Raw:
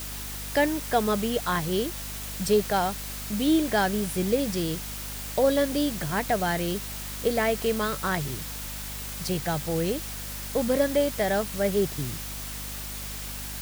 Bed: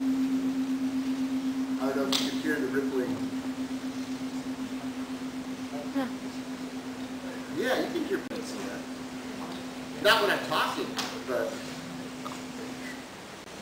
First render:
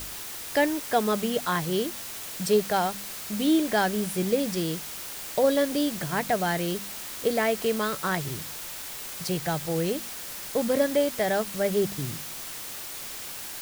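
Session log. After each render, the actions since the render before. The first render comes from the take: de-hum 50 Hz, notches 5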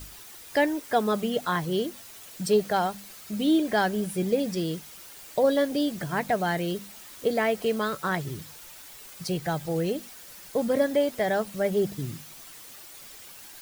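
denoiser 10 dB, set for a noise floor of -38 dBFS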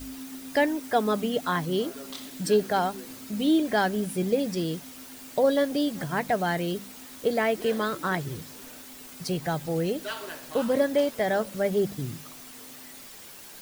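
add bed -13.5 dB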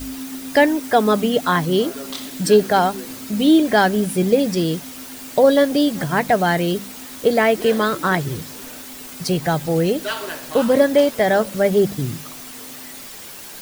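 gain +9 dB; limiter -3 dBFS, peak gain reduction 1.5 dB

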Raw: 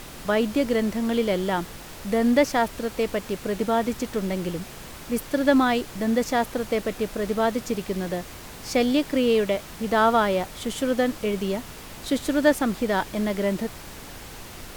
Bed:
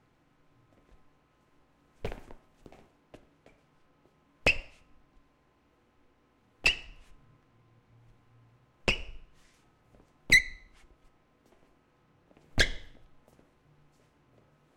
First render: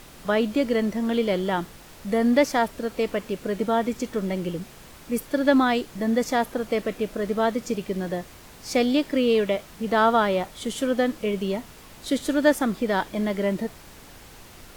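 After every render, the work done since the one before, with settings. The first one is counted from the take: noise print and reduce 6 dB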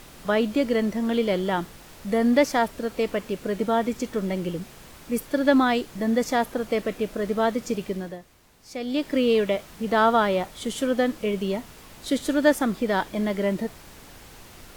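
7.87–9.12 dip -11.5 dB, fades 0.32 s linear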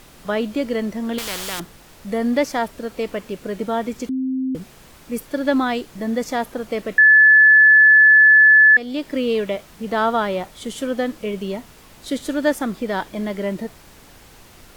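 1.18–1.6 spectral compressor 4:1; 4.09–4.55 bleep 261 Hz -19.5 dBFS; 6.98–8.77 bleep 1730 Hz -7 dBFS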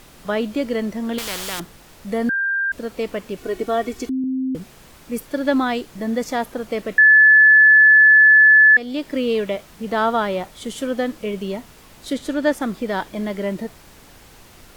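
2.29–2.72 bleep 1590 Hz -18 dBFS; 3.37–4.24 comb 2.7 ms, depth 73%; 12.13–12.62 high shelf 7400 Hz -6.5 dB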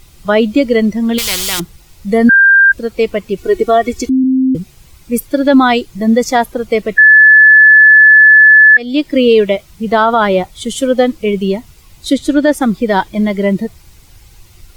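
per-bin expansion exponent 1.5; maximiser +15 dB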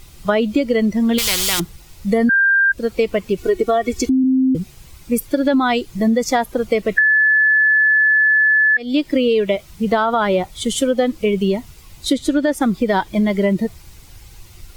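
compressor, threshold -13 dBFS, peak gain reduction 9.5 dB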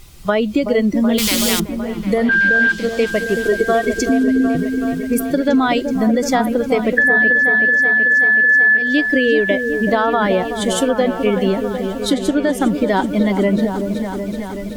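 repeats that get brighter 0.377 s, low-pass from 750 Hz, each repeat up 1 oct, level -6 dB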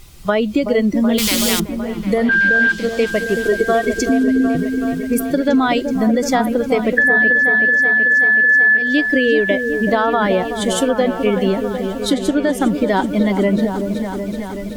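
nothing audible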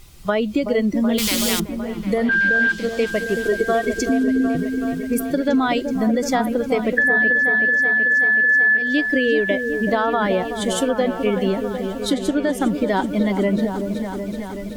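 gain -3.5 dB

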